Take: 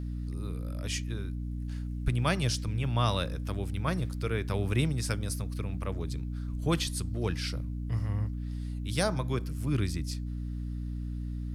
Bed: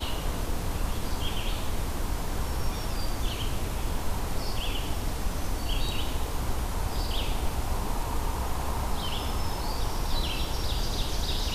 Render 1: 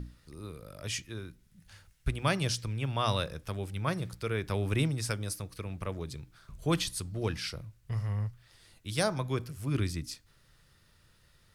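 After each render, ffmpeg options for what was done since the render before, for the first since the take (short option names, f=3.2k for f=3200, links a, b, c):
-af "bandreject=f=60:t=h:w=6,bandreject=f=120:t=h:w=6,bandreject=f=180:t=h:w=6,bandreject=f=240:t=h:w=6,bandreject=f=300:t=h:w=6"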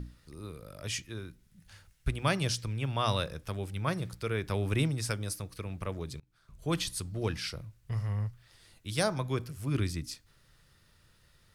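-filter_complex "[0:a]asplit=2[a][b];[a]atrim=end=6.2,asetpts=PTS-STARTPTS,afade=t=out:st=6.196:d=0.004:c=hsin:silence=0.0668344[c];[b]atrim=start=6.2,asetpts=PTS-STARTPTS,afade=t=in:d=0.72:silence=0.0668344[d];[c][d]concat=n=2:v=0:a=1"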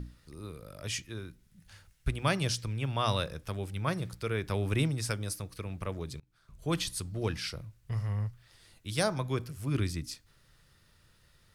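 -af anull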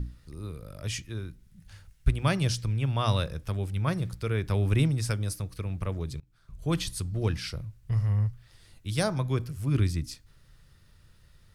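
-af "lowshelf=f=160:g=10"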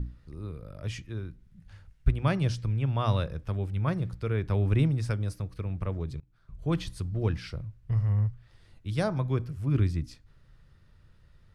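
-af "lowpass=f=1.8k:p=1"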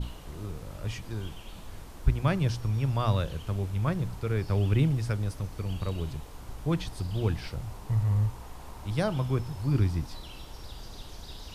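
-filter_complex "[1:a]volume=-14dB[a];[0:a][a]amix=inputs=2:normalize=0"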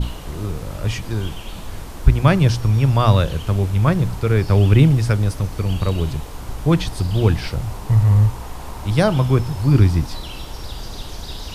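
-af "volume=12dB,alimiter=limit=-1dB:level=0:latency=1"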